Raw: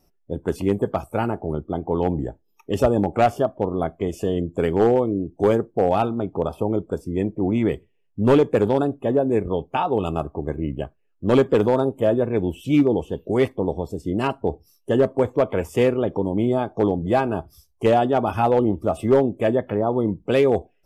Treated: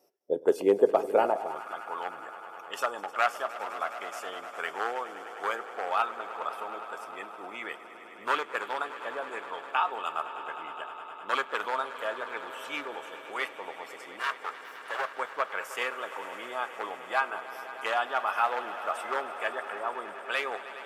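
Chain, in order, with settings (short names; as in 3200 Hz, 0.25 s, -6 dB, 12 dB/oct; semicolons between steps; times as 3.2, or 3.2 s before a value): 14.19–15.08 minimum comb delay 1.8 ms; HPF 80 Hz; swelling echo 0.103 s, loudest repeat 5, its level -16.5 dB; high-pass sweep 460 Hz -> 1300 Hz, 1.15–1.69; gain -3.5 dB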